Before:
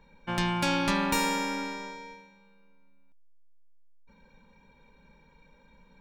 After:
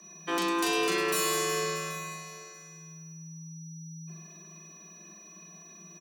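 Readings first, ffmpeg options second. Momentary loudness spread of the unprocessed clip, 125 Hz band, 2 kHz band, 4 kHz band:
16 LU, -4.5 dB, -0.5 dB, +1.0 dB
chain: -filter_complex "[0:a]aeval=exprs='val(0)+0.001*sin(2*PI*5700*n/s)':c=same,alimiter=limit=-21.5dB:level=0:latency=1:release=232,asplit=2[a][b];[b]aecho=0:1:782:0.119[c];[a][c]amix=inputs=2:normalize=0,crystalizer=i=2.5:c=0,asplit=2[d][e];[e]aecho=0:1:40|104|206.4|370.2|632.4:0.631|0.398|0.251|0.158|0.1[f];[d][f]amix=inputs=2:normalize=0,afreqshift=160,asoftclip=type=tanh:threshold=-18.5dB"

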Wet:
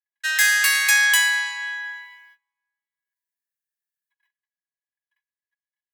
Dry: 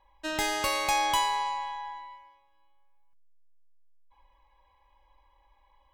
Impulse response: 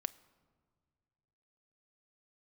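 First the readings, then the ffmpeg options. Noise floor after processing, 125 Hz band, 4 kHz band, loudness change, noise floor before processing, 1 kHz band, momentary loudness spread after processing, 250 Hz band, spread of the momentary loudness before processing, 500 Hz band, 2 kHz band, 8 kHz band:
under -85 dBFS, n/a, +9.0 dB, +11.0 dB, -66 dBFS, -8.5 dB, 14 LU, under -35 dB, 16 LU, under -20 dB, +17.5 dB, +13.5 dB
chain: -filter_complex "[0:a]agate=range=-42dB:threshold=-57dB:ratio=16:detection=peak,highpass=f=1.7k:t=q:w=16,crystalizer=i=8.5:c=0,asplit=2[a][b];[1:a]atrim=start_sample=2205,asetrate=41895,aresample=44100[c];[b][c]afir=irnorm=-1:irlink=0,volume=-4.5dB[d];[a][d]amix=inputs=2:normalize=0,volume=-10dB"

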